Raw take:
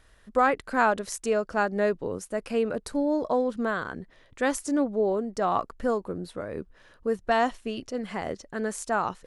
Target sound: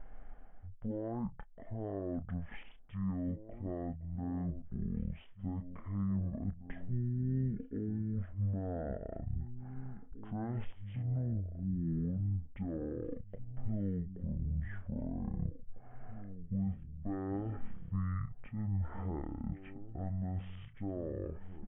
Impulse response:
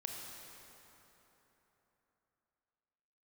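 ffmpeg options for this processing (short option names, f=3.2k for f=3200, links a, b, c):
-filter_complex "[0:a]deesser=0.65,aexciter=amount=1.3:drive=4.1:freq=3.5k,areverse,acompressor=threshold=-31dB:ratio=12,areverse,alimiter=level_in=8dB:limit=-24dB:level=0:latency=1:release=460,volume=-8dB,aemphasis=mode=reproduction:type=bsi,asplit=2[a][b];[b]adelay=13,volume=-13dB[c];[a][c]amix=inputs=2:normalize=0,asplit=2[d][e];[e]adelay=1037,lowpass=f=1k:p=1,volume=-12dB,asplit=2[f][g];[g]adelay=1037,lowpass=f=1k:p=1,volume=0.29,asplit=2[h][i];[i]adelay=1037,lowpass=f=1k:p=1,volume=0.29[j];[f][h][j]amix=inputs=3:normalize=0[k];[d][k]amix=inputs=2:normalize=0,aresample=16000,aresample=44100,asetrate=18846,aresample=44100,volume=1dB"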